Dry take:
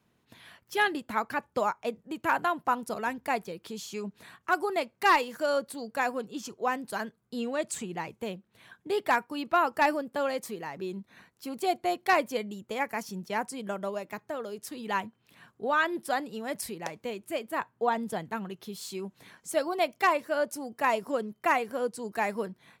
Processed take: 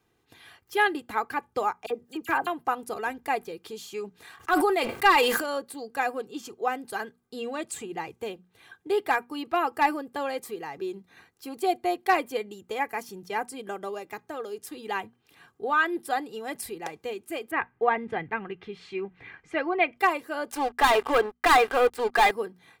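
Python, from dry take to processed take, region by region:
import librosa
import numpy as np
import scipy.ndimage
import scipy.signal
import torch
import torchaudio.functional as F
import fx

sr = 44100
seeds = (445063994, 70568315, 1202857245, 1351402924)

y = fx.chain(x, sr, fx.block_float(bits=7),
    fx.dispersion(late='lows', ms=44.0, hz=2100.0), at=(1.86, 2.47))
y = fx.chain(y, sr, fx.low_shelf(hz=370.0, db=-7.5),
    fx.leveller(passes=1),
    fx.sustainer(db_per_s=35.0), at=(4.22, 5.44))
y = fx.chain(y, sr, fx.lowpass_res(hz=2200.0, q=3.3),
    fx.low_shelf(hz=130.0, db=12.0), at=(17.51, 19.97))
y = fx.chain(y, sr, fx.bandpass_q(hz=1400.0, q=0.92),
    fx.leveller(passes=5), at=(20.51, 22.31))
y = fx.hum_notches(y, sr, base_hz=60, count=4)
y = fx.dynamic_eq(y, sr, hz=5800.0, q=1.8, threshold_db=-53.0, ratio=4.0, max_db=-6)
y = y + 0.57 * np.pad(y, (int(2.5 * sr / 1000.0), 0))[:len(y)]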